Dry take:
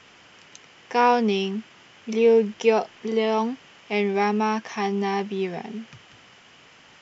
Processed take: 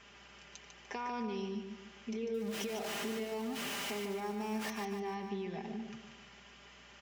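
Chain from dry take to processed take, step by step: 2.34–4.70 s: jump at every zero crossing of -23 dBFS; high-pass 130 Hz 24 dB/octave; comb 5 ms, depth 64%; peak limiter -16 dBFS, peak gain reduction 11 dB; compression 3:1, threshold -31 dBFS, peak gain reduction 9 dB; hum 60 Hz, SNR 29 dB; feedback delay 148 ms, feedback 39%, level -6.5 dB; trim -8 dB

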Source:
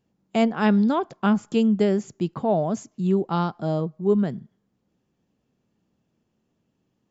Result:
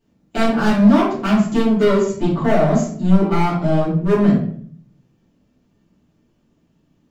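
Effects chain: 1.65–2.13 s: comb 2.1 ms, depth 62%; overload inside the chain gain 21.5 dB; simulated room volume 71 m³, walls mixed, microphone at 2.6 m; trim -2 dB

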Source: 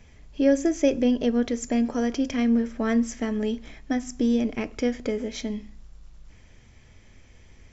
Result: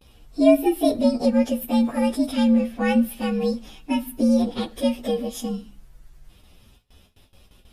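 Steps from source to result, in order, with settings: frequency axis rescaled in octaves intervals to 119%; gate with hold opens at -46 dBFS; bass shelf 320 Hz -3.5 dB; trim +6.5 dB

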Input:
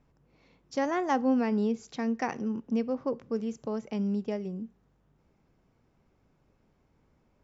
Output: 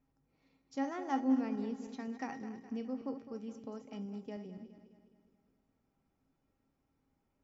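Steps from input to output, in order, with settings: backward echo that repeats 104 ms, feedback 71%, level -10.5 dB; feedback comb 270 Hz, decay 0.19 s, harmonics odd, mix 80%

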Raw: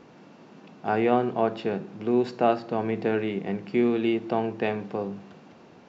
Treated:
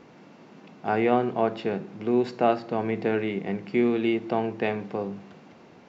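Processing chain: peaking EQ 2.1 kHz +4.5 dB 0.2 oct

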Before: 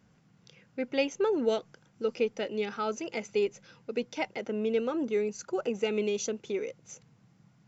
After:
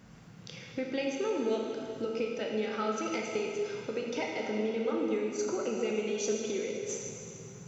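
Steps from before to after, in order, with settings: compression 4:1, threshold -44 dBFS, peak gain reduction 18.5 dB; reverberation RT60 2.6 s, pre-delay 7 ms, DRR -1.5 dB; trim +9 dB

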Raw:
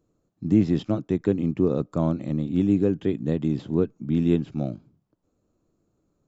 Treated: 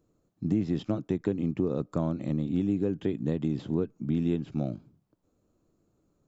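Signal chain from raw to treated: compression 3:1, threshold -25 dBFS, peak gain reduction 9.5 dB

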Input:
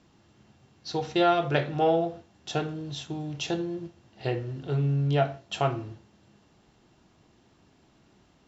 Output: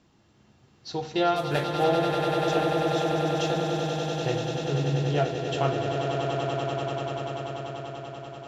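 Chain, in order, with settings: 1.36–1.84 s: CVSD coder 64 kbps; echo with a slow build-up 97 ms, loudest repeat 8, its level -8 dB; trim -1.5 dB

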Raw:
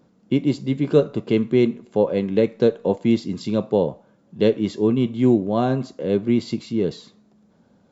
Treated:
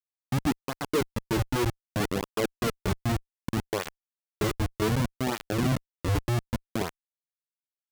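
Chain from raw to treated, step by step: Schmitt trigger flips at -18 dBFS; cancelling through-zero flanger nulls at 0.65 Hz, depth 5.3 ms

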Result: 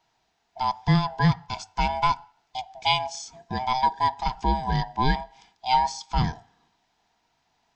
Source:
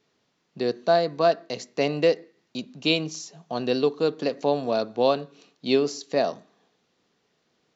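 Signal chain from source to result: split-band scrambler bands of 500 Hz

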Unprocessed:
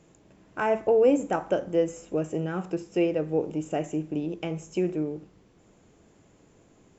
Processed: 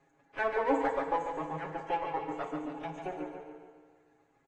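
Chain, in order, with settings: comb filter that takes the minimum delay 0.48 ms; three-band isolator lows -12 dB, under 450 Hz, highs -13 dB, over 2.6 kHz; reverb removal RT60 0.75 s; small resonant body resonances 820/1700 Hz, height 13 dB, ringing for 80 ms; time stretch by phase-locked vocoder 0.64×; reverb removal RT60 1.4 s; comb 7.3 ms, depth 85%; on a send: feedback delay 143 ms, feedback 49%, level -6 dB; on the sum: FDN reverb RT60 2 s, low-frequency decay 1.1×, high-frequency decay 0.75×, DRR 4.5 dB; trim -4.5 dB; AAC 32 kbps 22.05 kHz

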